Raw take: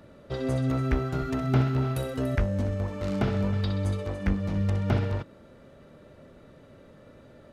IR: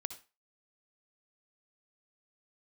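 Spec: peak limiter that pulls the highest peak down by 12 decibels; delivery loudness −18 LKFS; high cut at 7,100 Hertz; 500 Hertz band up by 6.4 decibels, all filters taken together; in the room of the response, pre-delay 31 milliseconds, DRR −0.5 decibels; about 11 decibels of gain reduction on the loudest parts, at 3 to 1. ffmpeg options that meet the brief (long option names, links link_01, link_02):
-filter_complex "[0:a]lowpass=7100,equalizer=frequency=500:width_type=o:gain=8,acompressor=threshold=-32dB:ratio=3,alimiter=level_in=6.5dB:limit=-24dB:level=0:latency=1,volume=-6.5dB,asplit=2[link_01][link_02];[1:a]atrim=start_sample=2205,adelay=31[link_03];[link_02][link_03]afir=irnorm=-1:irlink=0,volume=1.5dB[link_04];[link_01][link_04]amix=inputs=2:normalize=0,volume=18dB"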